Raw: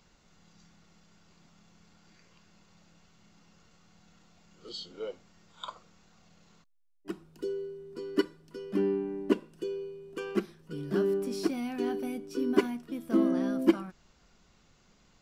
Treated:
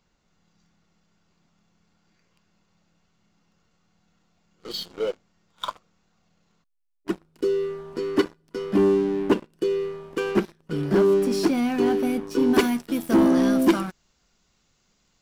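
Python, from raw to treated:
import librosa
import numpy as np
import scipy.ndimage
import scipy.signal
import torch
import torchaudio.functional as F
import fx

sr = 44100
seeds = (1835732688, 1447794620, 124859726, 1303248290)

y = fx.high_shelf(x, sr, hz=3400.0, db=fx.steps((0.0, -3.0), (12.53, 8.5)))
y = fx.leveller(y, sr, passes=3)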